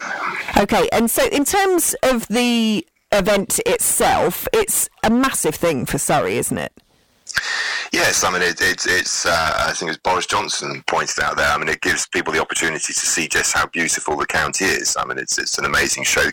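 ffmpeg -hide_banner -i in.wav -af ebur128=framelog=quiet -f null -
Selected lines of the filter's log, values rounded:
Integrated loudness:
  I:         -17.6 LUFS
  Threshold: -27.7 LUFS
Loudness range:
  LRA:         2.2 LU
  Threshold: -37.8 LUFS
  LRA low:   -19.0 LUFS
  LRA high:  -16.8 LUFS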